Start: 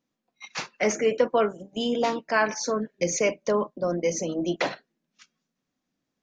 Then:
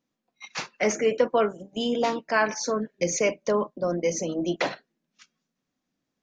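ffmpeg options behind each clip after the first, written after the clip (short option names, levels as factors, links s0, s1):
-af anull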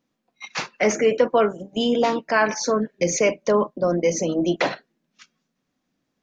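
-filter_complex "[0:a]asplit=2[s0][s1];[s1]alimiter=limit=0.112:level=0:latency=1:release=66,volume=0.708[s2];[s0][s2]amix=inputs=2:normalize=0,highshelf=f=6600:g=-6,volume=1.19"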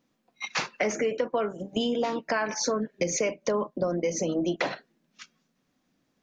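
-af "acompressor=threshold=0.0447:ratio=6,volume=1.33"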